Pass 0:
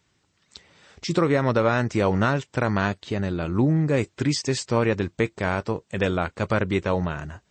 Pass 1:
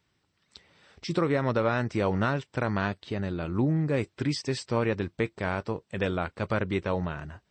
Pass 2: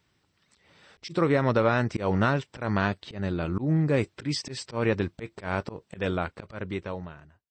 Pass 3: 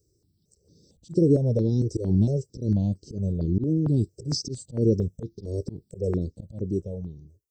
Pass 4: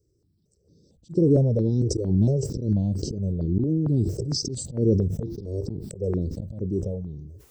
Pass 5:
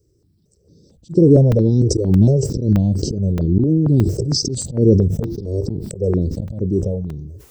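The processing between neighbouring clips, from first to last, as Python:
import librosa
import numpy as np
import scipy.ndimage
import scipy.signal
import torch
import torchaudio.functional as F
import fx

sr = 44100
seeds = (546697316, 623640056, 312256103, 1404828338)

y1 = fx.peak_eq(x, sr, hz=6800.0, db=-13.5, octaves=0.22)
y1 = y1 * librosa.db_to_amplitude(-5.0)
y2 = fx.fade_out_tail(y1, sr, length_s=1.64)
y2 = fx.auto_swell(y2, sr, attack_ms=142.0)
y2 = y2 * librosa.db_to_amplitude(3.0)
y3 = scipy.signal.sosfilt(scipy.signal.ellip(3, 1.0, 60, [440.0, 5600.0], 'bandstop', fs=sr, output='sos'), y2)
y3 = fx.phaser_held(y3, sr, hz=4.4, low_hz=770.0, high_hz=3600.0)
y3 = y3 * librosa.db_to_amplitude(7.5)
y4 = fx.high_shelf(y3, sr, hz=2700.0, db=-9.0)
y4 = fx.sustainer(y4, sr, db_per_s=35.0)
y5 = fx.buffer_crackle(y4, sr, first_s=0.9, period_s=0.62, block=128, kind='zero')
y5 = y5 * librosa.db_to_amplitude(8.0)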